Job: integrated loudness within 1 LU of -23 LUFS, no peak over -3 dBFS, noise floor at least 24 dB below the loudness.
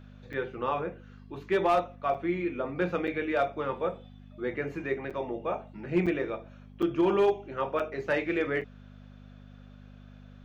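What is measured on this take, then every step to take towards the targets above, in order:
dropouts 8; longest dropout 6.5 ms; hum 50 Hz; highest harmonic 250 Hz; hum level -47 dBFS; loudness -30.5 LUFS; peak level -16.0 dBFS; loudness target -23.0 LUFS
-> interpolate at 0.33/2.14/3.07/5.10/6.06/6.82/7.79/8.61 s, 6.5 ms; de-hum 50 Hz, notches 5; trim +7.5 dB

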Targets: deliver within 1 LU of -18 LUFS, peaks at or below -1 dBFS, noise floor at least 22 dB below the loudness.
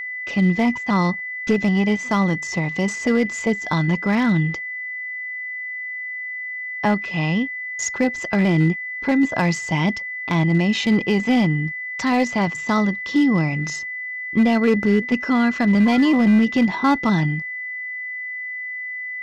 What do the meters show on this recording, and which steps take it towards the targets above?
clipped samples 0.7%; clipping level -10.5 dBFS; steady tone 2 kHz; tone level -27 dBFS; loudness -20.5 LUFS; peak level -10.5 dBFS; loudness target -18.0 LUFS
-> clip repair -10.5 dBFS; band-stop 2 kHz, Q 30; trim +2.5 dB

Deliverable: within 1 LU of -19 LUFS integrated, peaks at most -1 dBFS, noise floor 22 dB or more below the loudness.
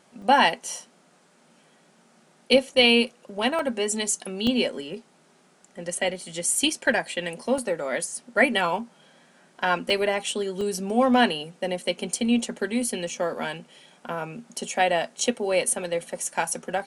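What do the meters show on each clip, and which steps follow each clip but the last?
dropouts 8; longest dropout 2.6 ms; loudness -24.5 LUFS; peak level -5.5 dBFS; loudness target -19.0 LUFS
-> interpolate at 0.22/3.59/4.47/7.58/9.90/10.61/13.09/15.19 s, 2.6 ms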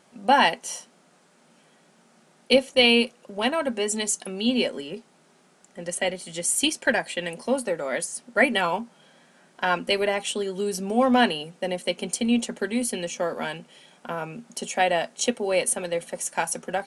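dropouts 0; loudness -24.5 LUFS; peak level -5.5 dBFS; loudness target -19.0 LUFS
-> trim +5.5 dB; peak limiter -1 dBFS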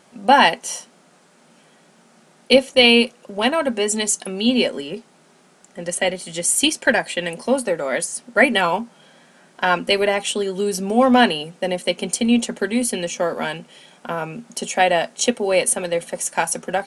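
loudness -19.0 LUFS; peak level -1.0 dBFS; noise floor -54 dBFS

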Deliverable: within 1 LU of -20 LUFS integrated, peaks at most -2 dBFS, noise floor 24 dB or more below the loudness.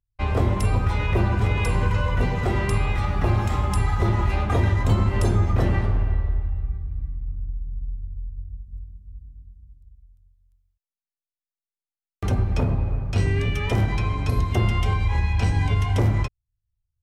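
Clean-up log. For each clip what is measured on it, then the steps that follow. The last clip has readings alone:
loudness -23.5 LUFS; peak level -9.0 dBFS; loudness target -20.0 LUFS
-> trim +3.5 dB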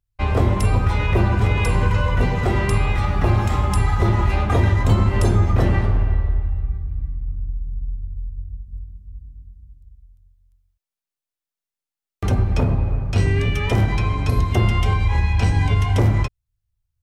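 loudness -20.0 LUFS; peak level -5.5 dBFS; noise floor -90 dBFS

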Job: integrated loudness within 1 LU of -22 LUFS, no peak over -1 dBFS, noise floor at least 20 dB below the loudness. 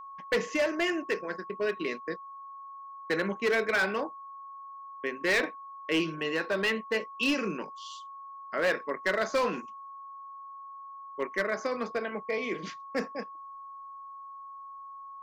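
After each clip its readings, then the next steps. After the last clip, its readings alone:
clipped samples 1.2%; clipping level -21.5 dBFS; steady tone 1.1 kHz; tone level -42 dBFS; loudness -30.5 LUFS; peak level -21.5 dBFS; loudness target -22.0 LUFS
-> clip repair -21.5 dBFS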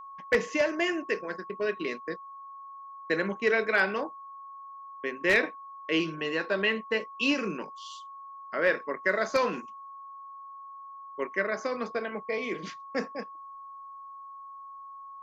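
clipped samples 0.0%; steady tone 1.1 kHz; tone level -42 dBFS
-> band-stop 1.1 kHz, Q 30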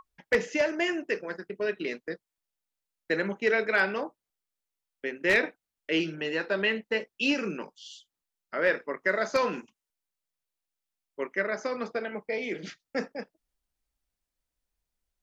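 steady tone not found; loudness -29.5 LUFS; peak level -12.0 dBFS; loudness target -22.0 LUFS
-> trim +7.5 dB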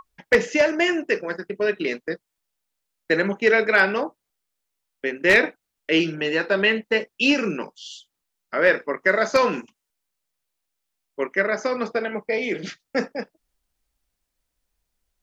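loudness -22.0 LUFS; peak level -4.5 dBFS; noise floor -81 dBFS

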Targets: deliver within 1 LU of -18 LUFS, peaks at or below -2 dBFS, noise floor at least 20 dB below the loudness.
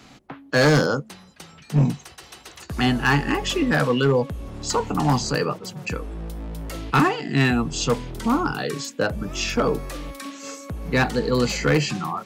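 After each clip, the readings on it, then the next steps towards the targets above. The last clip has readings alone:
clipped samples 0.9%; clipping level -12.0 dBFS; loudness -22.5 LUFS; peak level -12.0 dBFS; loudness target -18.0 LUFS
-> clip repair -12 dBFS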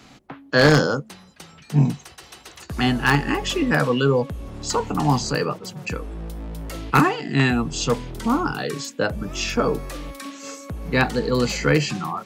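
clipped samples 0.0%; loudness -21.5 LUFS; peak level -3.0 dBFS; loudness target -18.0 LUFS
-> trim +3.5 dB; peak limiter -2 dBFS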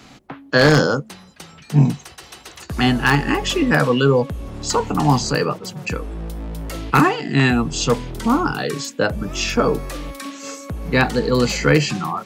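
loudness -18.5 LUFS; peak level -2.0 dBFS; noise floor -45 dBFS

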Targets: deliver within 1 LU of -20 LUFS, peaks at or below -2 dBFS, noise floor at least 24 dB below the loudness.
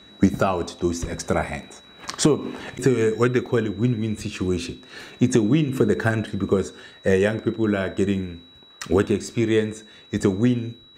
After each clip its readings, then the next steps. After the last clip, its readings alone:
dropouts 2; longest dropout 2.1 ms; steady tone 3.9 kHz; tone level -48 dBFS; loudness -23.0 LUFS; peak level -6.0 dBFS; loudness target -20.0 LUFS
-> interpolate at 2.70/3.46 s, 2.1 ms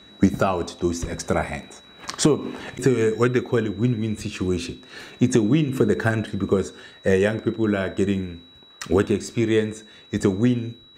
dropouts 0; steady tone 3.9 kHz; tone level -48 dBFS
-> band-stop 3.9 kHz, Q 30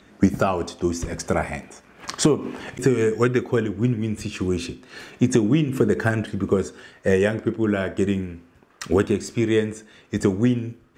steady tone not found; loudness -23.0 LUFS; peak level -6.0 dBFS; loudness target -20.0 LUFS
-> trim +3 dB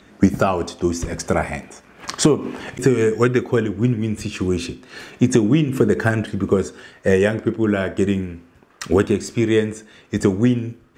loudness -20.0 LUFS; peak level -3.0 dBFS; noise floor -51 dBFS

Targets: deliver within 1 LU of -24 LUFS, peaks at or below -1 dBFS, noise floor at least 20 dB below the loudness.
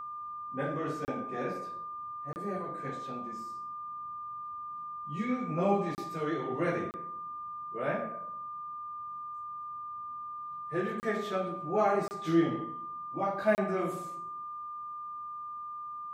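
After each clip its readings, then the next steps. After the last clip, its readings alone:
dropouts 7; longest dropout 29 ms; steady tone 1.2 kHz; tone level -38 dBFS; loudness -35.0 LUFS; peak level -14.5 dBFS; loudness target -24.0 LUFS
-> interpolate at 1.05/2.33/5.95/6.91/11.00/12.08/13.55 s, 29 ms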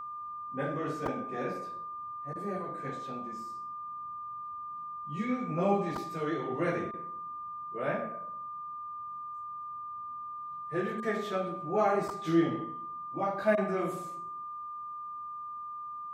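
dropouts 0; steady tone 1.2 kHz; tone level -38 dBFS
-> band-stop 1.2 kHz, Q 30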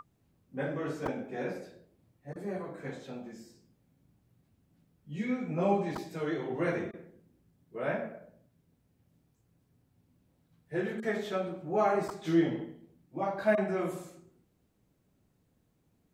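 steady tone not found; loudness -33.5 LUFS; peak level -14.5 dBFS; loudness target -24.0 LUFS
-> trim +9.5 dB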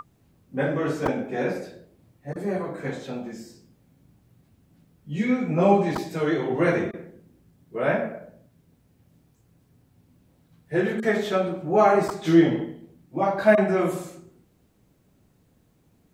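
loudness -24.0 LUFS; peak level -5.0 dBFS; noise floor -63 dBFS

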